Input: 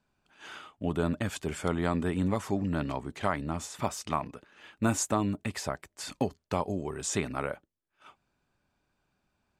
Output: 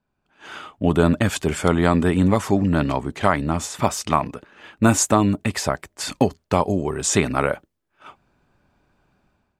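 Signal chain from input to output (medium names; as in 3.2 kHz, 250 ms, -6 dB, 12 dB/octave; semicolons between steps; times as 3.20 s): level rider gain up to 14 dB; tape noise reduction on one side only decoder only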